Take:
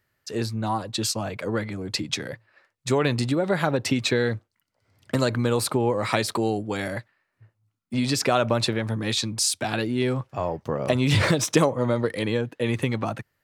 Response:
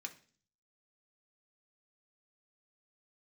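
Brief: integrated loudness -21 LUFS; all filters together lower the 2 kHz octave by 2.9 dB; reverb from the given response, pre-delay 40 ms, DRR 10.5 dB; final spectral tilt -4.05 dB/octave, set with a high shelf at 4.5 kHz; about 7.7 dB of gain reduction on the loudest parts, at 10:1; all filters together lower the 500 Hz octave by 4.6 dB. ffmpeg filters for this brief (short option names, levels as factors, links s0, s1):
-filter_complex "[0:a]equalizer=f=500:t=o:g=-5.5,equalizer=f=2000:t=o:g=-4.5,highshelf=f=4500:g=5.5,acompressor=threshold=0.0631:ratio=10,asplit=2[s0][s1];[1:a]atrim=start_sample=2205,adelay=40[s2];[s1][s2]afir=irnorm=-1:irlink=0,volume=0.398[s3];[s0][s3]amix=inputs=2:normalize=0,volume=2.66"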